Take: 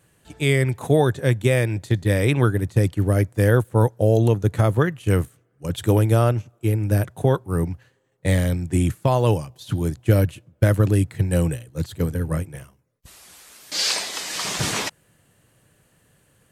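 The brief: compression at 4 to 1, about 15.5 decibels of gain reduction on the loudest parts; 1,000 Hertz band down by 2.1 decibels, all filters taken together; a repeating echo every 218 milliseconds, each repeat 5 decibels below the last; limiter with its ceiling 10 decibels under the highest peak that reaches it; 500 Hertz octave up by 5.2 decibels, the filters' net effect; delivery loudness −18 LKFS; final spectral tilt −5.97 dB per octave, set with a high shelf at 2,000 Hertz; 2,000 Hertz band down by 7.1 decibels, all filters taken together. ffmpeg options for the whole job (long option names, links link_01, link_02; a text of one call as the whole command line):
ffmpeg -i in.wav -af "equalizer=frequency=500:width_type=o:gain=7.5,equalizer=frequency=1000:width_type=o:gain=-3.5,highshelf=frequency=2000:gain=-8,equalizer=frequency=2000:width_type=o:gain=-3.5,acompressor=threshold=-29dB:ratio=4,alimiter=limit=-23.5dB:level=0:latency=1,aecho=1:1:218|436|654|872|1090|1308|1526:0.562|0.315|0.176|0.0988|0.0553|0.031|0.0173,volume=15dB" out.wav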